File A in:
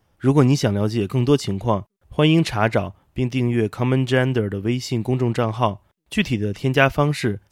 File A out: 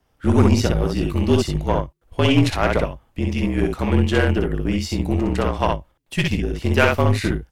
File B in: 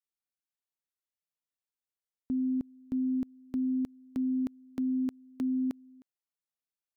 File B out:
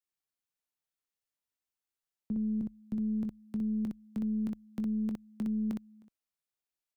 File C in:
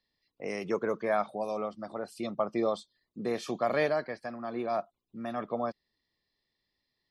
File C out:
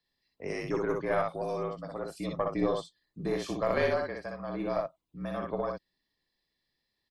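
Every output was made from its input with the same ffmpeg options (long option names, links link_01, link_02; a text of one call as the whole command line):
ffmpeg -i in.wav -af "aecho=1:1:21|61:0.237|0.708,afreqshift=-43,aeval=exprs='1*(cos(1*acos(clip(val(0)/1,-1,1)))-cos(1*PI/2))+0.0631*(cos(8*acos(clip(val(0)/1,-1,1)))-cos(8*PI/2))':channel_layout=same,volume=-1.5dB" out.wav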